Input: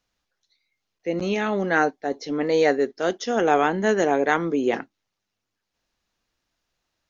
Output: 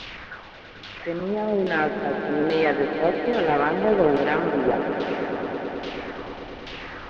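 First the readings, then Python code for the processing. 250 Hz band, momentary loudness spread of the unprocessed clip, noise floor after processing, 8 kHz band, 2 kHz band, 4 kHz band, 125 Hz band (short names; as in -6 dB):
+0.5 dB, 8 LU, -43 dBFS, n/a, -0.5 dB, +1.0 dB, +1.5 dB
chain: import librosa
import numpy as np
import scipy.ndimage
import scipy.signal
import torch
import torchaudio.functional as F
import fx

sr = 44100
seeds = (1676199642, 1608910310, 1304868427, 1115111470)

p1 = fx.delta_mod(x, sr, bps=32000, step_db=-29.5)
p2 = fx.filter_lfo_lowpass(p1, sr, shape='saw_down', hz=1.2, low_hz=370.0, high_hz=3600.0, q=2.3)
p3 = p2 + fx.echo_swell(p2, sr, ms=108, loudest=5, wet_db=-12.5, dry=0)
p4 = fx.cheby_harmonics(p3, sr, harmonics=(2,), levels_db=(-13,), full_scale_db=-4.0)
y = p4 * 10.0 ** (-3.5 / 20.0)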